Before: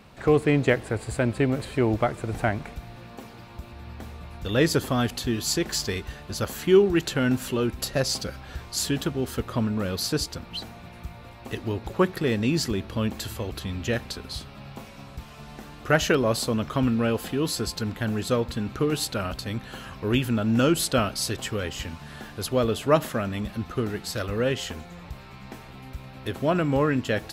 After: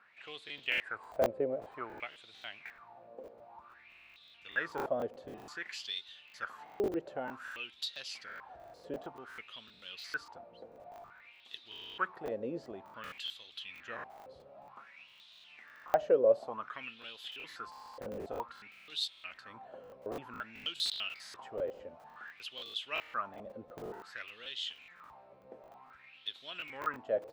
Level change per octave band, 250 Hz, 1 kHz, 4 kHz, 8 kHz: −22.5, −9.5, −8.5, −23.0 decibels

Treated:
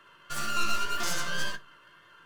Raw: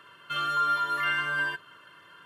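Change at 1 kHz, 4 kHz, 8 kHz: −6.0, +1.0, +16.5 decibels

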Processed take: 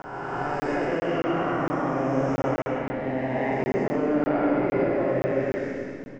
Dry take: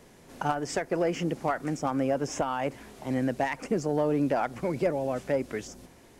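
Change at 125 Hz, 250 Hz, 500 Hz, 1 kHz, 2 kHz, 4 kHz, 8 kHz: +3.0 dB, +4.5 dB, +4.0 dB, +3.0 dB, +5.0 dB, −1.5 dB, below −10 dB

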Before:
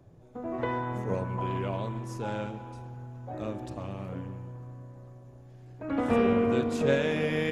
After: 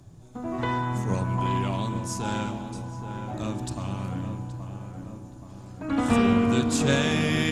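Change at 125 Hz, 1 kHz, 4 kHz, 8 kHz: +6.5, +5.0, +10.0, +16.0 decibels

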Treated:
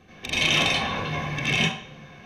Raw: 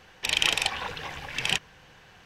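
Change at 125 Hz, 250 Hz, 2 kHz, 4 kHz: +14.0, +15.0, +5.0, +2.5 decibels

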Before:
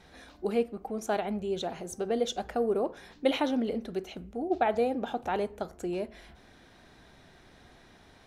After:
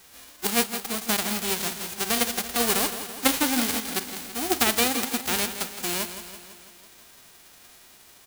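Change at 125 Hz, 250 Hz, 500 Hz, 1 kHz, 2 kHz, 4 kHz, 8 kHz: +3.0, +3.0, −3.0, +3.0, +12.0, +14.5, +22.0 decibels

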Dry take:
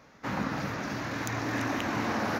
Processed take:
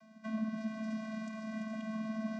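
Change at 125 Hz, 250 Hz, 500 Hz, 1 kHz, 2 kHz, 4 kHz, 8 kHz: −12.5 dB, −3.0 dB, −10.0 dB, −16.0 dB, −15.0 dB, −16.0 dB, below −15 dB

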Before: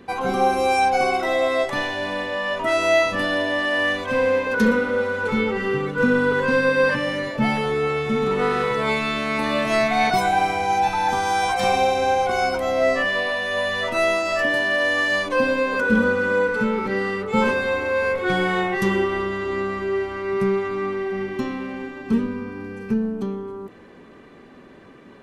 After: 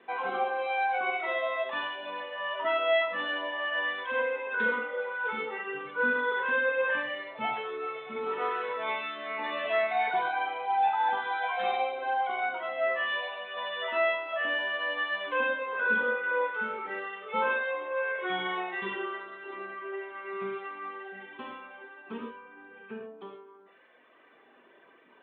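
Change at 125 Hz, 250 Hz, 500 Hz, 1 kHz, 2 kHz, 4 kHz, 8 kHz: below −25 dB, −21.0 dB, −11.5 dB, −8.0 dB, −7.0 dB, −9.0 dB, below −40 dB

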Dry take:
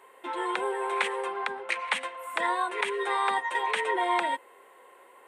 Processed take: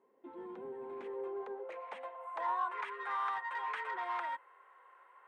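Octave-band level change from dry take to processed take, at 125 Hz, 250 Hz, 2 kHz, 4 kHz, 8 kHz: can't be measured, −11.5 dB, −13.5 dB, −20.0 dB, below −25 dB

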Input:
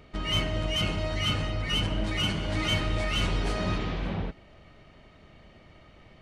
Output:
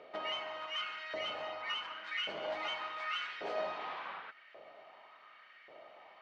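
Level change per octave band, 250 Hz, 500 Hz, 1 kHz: −24.0, −6.5, −3.5 decibels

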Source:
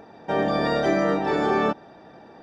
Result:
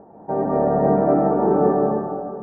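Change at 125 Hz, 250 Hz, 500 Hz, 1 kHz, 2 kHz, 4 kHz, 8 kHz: +6.5 dB, +5.0 dB, +5.5 dB, +4.0 dB, −13.0 dB, below −35 dB, can't be measured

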